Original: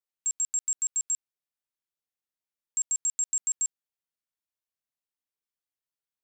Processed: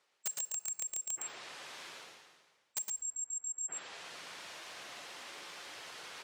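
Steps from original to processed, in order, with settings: spectral gate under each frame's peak -15 dB strong; treble ducked by the level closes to 1600 Hz, closed at -27 dBFS; spectral gate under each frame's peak -15 dB strong; BPF 170–5900 Hz; bell 230 Hz -5.5 dB 0.84 oct; reverse; upward compressor, threshold -37 dBFS; reverse; wrapped overs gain 40 dB; tone controls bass -5 dB, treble -6 dB; echo 0.113 s -4.5 dB; on a send at -14 dB: reverb RT60 1.1 s, pre-delay 6 ms; on the sum: gain +16.5 dB

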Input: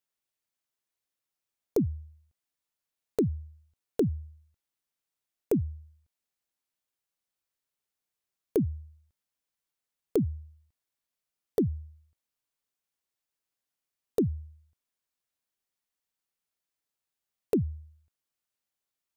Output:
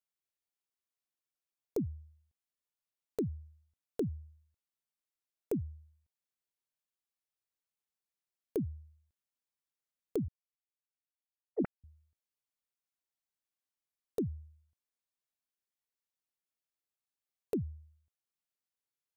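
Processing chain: 10.28–11.84 sine-wave speech; gain -8 dB

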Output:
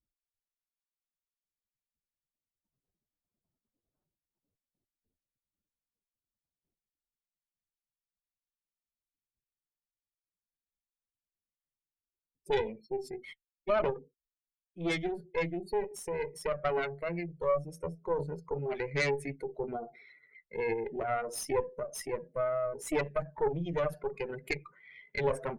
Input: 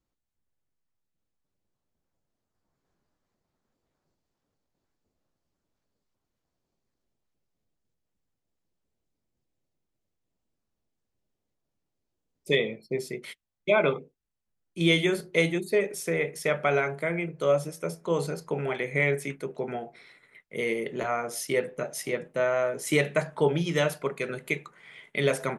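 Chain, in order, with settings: spectral contrast raised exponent 2; added harmonics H 4 -12 dB, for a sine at -12 dBFS; vocal rider within 4 dB 2 s; gain -6.5 dB

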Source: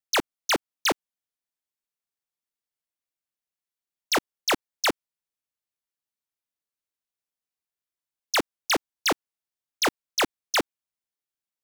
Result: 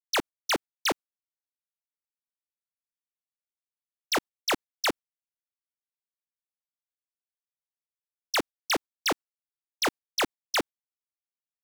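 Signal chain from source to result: gate -36 dBFS, range -19 dB; gain -3 dB

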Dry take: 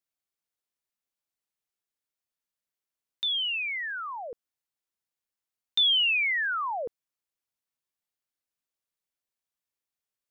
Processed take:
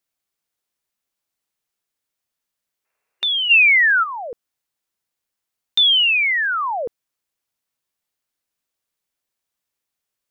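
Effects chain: spectral gain 2.85–4.03, 380–2800 Hz +11 dB; gain +8 dB

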